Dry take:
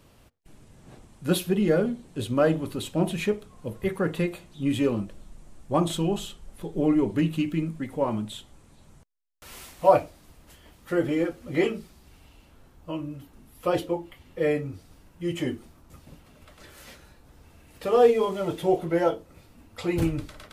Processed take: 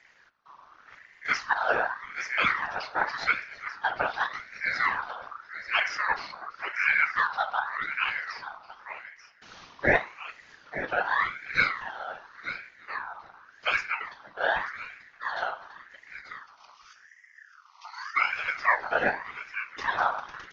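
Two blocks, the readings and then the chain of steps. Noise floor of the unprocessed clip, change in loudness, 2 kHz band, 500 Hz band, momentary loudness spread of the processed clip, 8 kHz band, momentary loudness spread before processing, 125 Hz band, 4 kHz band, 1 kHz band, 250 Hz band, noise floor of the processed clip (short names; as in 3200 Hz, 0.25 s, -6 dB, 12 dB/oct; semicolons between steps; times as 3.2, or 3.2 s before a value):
-56 dBFS, -2.0 dB, +13.5 dB, -11.0 dB, 17 LU, n/a, 16 LU, -17.5 dB, +1.0 dB, +3.5 dB, -19.5 dB, -58 dBFS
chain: de-hum 116.4 Hz, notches 31; spectral delete 16.18–18.16, 280–2900 Hz; comb 2.5 ms, depth 36%; echo 0.335 s -18.5 dB; whisperiser; on a send: echo 0.888 s -11.5 dB; on the sum: downsampling 11025 Hz; ring modulator with a swept carrier 1500 Hz, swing 30%, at 0.87 Hz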